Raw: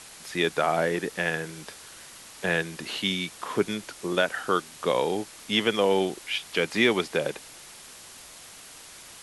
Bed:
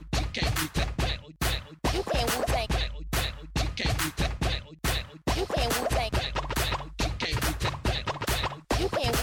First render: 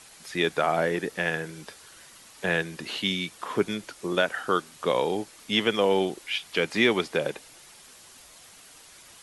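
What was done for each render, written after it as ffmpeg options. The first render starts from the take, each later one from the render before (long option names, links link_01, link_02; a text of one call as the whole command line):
ffmpeg -i in.wav -af "afftdn=noise_reduction=6:noise_floor=-47" out.wav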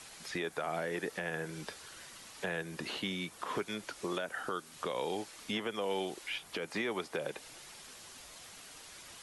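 ffmpeg -i in.wav -filter_complex "[0:a]acrossover=split=530|1500|7100[link_01][link_02][link_03][link_04];[link_01]acompressor=threshold=-39dB:ratio=4[link_05];[link_02]acompressor=threshold=-37dB:ratio=4[link_06];[link_03]acompressor=threshold=-42dB:ratio=4[link_07];[link_04]acompressor=threshold=-57dB:ratio=4[link_08];[link_05][link_06][link_07][link_08]amix=inputs=4:normalize=0,alimiter=level_in=0.5dB:limit=-24dB:level=0:latency=1:release=127,volume=-0.5dB" out.wav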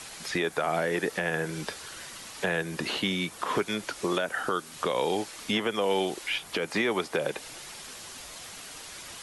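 ffmpeg -i in.wav -af "volume=8.5dB" out.wav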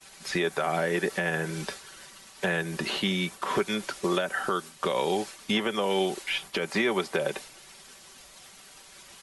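ffmpeg -i in.wav -af "agate=range=-33dB:threshold=-36dB:ratio=3:detection=peak,aecho=1:1:5.2:0.42" out.wav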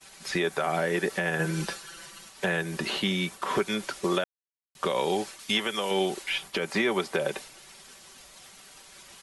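ffmpeg -i in.wav -filter_complex "[0:a]asettb=1/sr,asplit=3[link_01][link_02][link_03];[link_01]atrim=end=1.394[link_04];[link_02]atrim=start=1.39:end=2.29,asetpts=PTS-STARTPTS,afade=type=in:duration=0.004:curve=qsin,afade=type=out:start_time=0.896:duration=0.004:curve=qsin,aecho=1:1:5.9:0.83,atrim=end_sample=39690[link_05];[link_03]atrim=start=2.286[link_06];[link_04][link_05]acrossfade=duration=0.004:curve1=hsin:curve2=qsin[link_07];[link_07][link_06]acrossfade=duration=0.004:curve1=qsin:curve2=hsin,asettb=1/sr,asplit=3[link_08][link_09][link_10];[link_08]atrim=end=5.394[link_11];[link_09]atrim=start=5.39:end=5.91,asetpts=PTS-STARTPTS,afade=type=in:duration=0.004:curve=qsin,afade=type=out:start_time=0.516:duration=0.004:curve=qsin,tiltshelf=frequency=1500:gain=-5[link_12];[link_10]atrim=start=5.906[link_13];[link_11][link_12]acrossfade=duration=0.004:curve1=hsin:curve2=qsin[link_14];[link_14][link_13]acrossfade=duration=0.004:curve1=qsin:curve2=hsin,asplit=3[link_15][link_16][link_17];[link_15]atrim=end=4.24,asetpts=PTS-STARTPTS,afade=type=out:start_time=4.236:duration=0.004:curve=hsin[link_18];[link_16]atrim=start=4.24:end=4.75,asetpts=PTS-STARTPTS,volume=0[link_19];[link_17]atrim=start=4.75,asetpts=PTS-STARTPTS,afade=type=in:duration=0.004:curve=hsin[link_20];[link_18][link_19][link_20]concat=n=3:v=0:a=1" out.wav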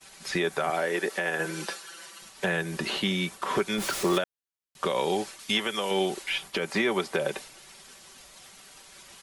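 ffmpeg -i in.wav -filter_complex "[0:a]asettb=1/sr,asplit=3[link_01][link_02][link_03];[link_01]atrim=end=0.704[link_04];[link_02]atrim=start=0.7:end=2.22,asetpts=PTS-STARTPTS,afade=type=in:duration=0.004:curve=qsin,afade=type=out:start_time=1.516:duration=0.004:curve=qsin,highpass=290[link_05];[link_03]atrim=start=2.216[link_06];[link_04][link_05]acrossfade=duration=0.004:curve1=hsin:curve2=qsin[link_07];[link_07][link_06]acrossfade=duration=0.004:curve1=qsin:curve2=hsin,asettb=1/sr,asplit=3[link_08][link_09][link_10];[link_08]atrim=end=3.784[link_11];[link_09]atrim=start=3.78:end=4.18,asetpts=PTS-STARTPTS,afade=type=in:duration=0.004:curve=qsin,afade=type=out:start_time=0.396:duration=0.004:curve=qsin,aeval=exprs='val(0)+0.5*0.0355*sgn(val(0))':channel_layout=same[link_12];[link_10]atrim=start=4.176[link_13];[link_11][link_12]acrossfade=duration=0.004:curve1=hsin:curve2=qsin[link_14];[link_14][link_13]acrossfade=duration=0.004:curve1=qsin:curve2=hsin" out.wav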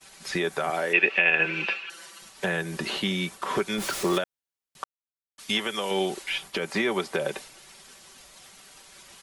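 ffmpeg -i in.wav -filter_complex "[0:a]asettb=1/sr,asplit=3[link_01][link_02][link_03];[link_01]atrim=end=0.934[link_04];[link_02]atrim=start=0.93:end=1.9,asetpts=PTS-STARTPTS,afade=type=in:duration=0.004:curve=qsin,afade=type=out:start_time=0.966:duration=0.004:curve=qsin,lowpass=frequency=2600:width_type=q:width=14[link_05];[link_03]atrim=start=1.896[link_06];[link_04][link_05]acrossfade=duration=0.004:curve1=hsin:curve2=qsin[link_07];[link_07][link_06]acrossfade=duration=0.004:curve1=qsin:curve2=hsin,asplit=3[link_08][link_09][link_10];[link_08]atrim=end=4.84,asetpts=PTS-STARTPTS,afade=type=out:start_time=4.836:duration=0.004:curve=hsin[link_11];[link_09]atrim=start=4.84:end=5.38,asetpts=PTS-STARTPTS,volume=0[link_12];[link_10]atrim=start=5.38,asetpts=PTS-STARTPTS,afade=type=in:duration=0.004:curve=hsin[link_13];[link_11][link_12][link_13]concat=n=3:v=0:a=1" out.wav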